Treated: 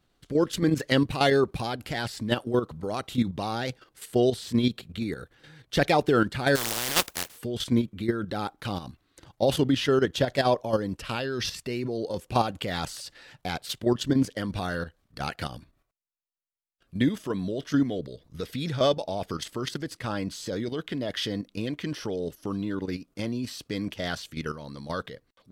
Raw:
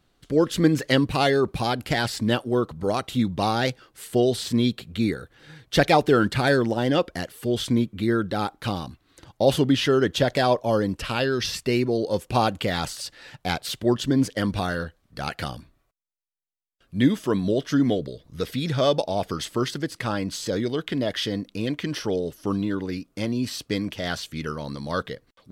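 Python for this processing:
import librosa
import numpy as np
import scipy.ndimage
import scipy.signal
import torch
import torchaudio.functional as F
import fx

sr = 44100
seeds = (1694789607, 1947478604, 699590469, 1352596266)

y = fx.spec_flatten(x, sr, power=0.2, at=(6.55, 7.36), fade=0.02)
y = fx.level_steps(y, sr, step_db=10)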